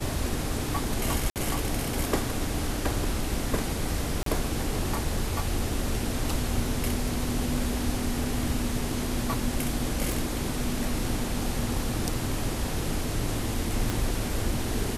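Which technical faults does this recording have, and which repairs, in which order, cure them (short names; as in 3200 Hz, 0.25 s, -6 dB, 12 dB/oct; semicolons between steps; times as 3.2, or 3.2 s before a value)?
1.3–1.36 gap 58 ms
4.23–4.26 gap 33 ms
10.12 pop
13.9 pop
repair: de-click; interpolate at 1.3, 58 ms; interpolate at 4.23, 33 ms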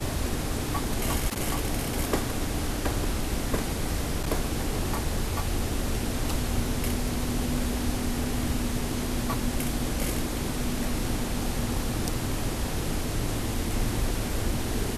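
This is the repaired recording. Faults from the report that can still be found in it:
13.9 pop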